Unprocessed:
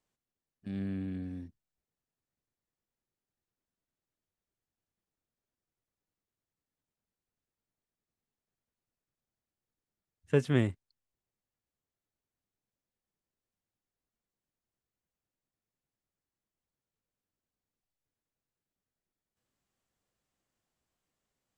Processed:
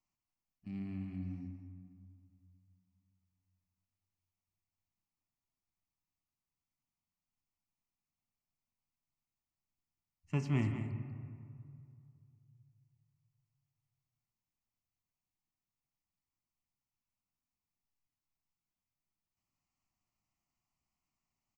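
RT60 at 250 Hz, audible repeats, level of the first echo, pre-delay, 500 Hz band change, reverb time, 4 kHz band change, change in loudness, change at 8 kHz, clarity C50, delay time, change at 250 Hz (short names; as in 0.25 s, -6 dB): 2.5 s, 1, -9.5 dB, 3 ms, -14.5 dB, 2.3 s, -9.0 dB, -7.0 dB, n/a, 5.5 dB, 0.192 s, -5.0 dB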